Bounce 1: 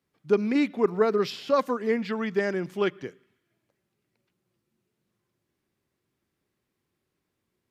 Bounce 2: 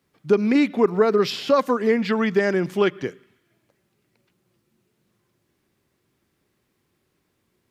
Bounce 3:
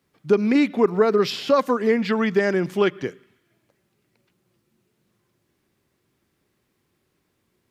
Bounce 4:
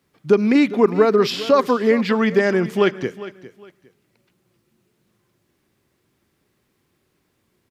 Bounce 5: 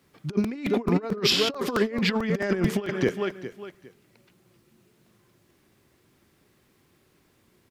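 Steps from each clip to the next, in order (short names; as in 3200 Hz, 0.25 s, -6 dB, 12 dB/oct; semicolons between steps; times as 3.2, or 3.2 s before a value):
compressor 2:1, threshold -26 dBFS, peak gain reduction 6 dB; gain +9 dB
nothing audible
feedback echo 0.406 s, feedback 25%, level -16 dB; gain +3 dB
negative-ratio compressor -22 dBFS, ratio -0.5; crackling interface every 0.22 s, samples 128, repeat, from 0.44; gain -2 dB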